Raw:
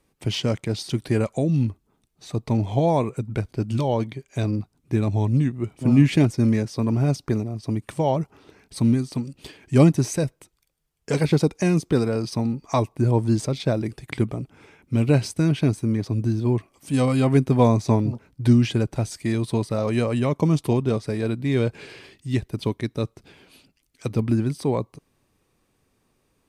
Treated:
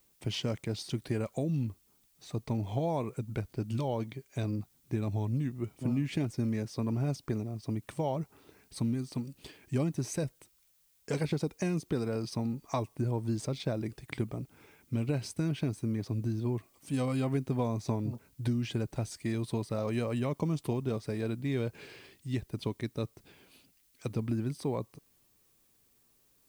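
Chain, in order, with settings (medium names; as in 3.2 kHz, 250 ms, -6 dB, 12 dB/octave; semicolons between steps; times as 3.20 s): compression, threshold -19 dBFS, peak gain reduction 9 dB; added noise blue -61 dBFS; trim -8 dB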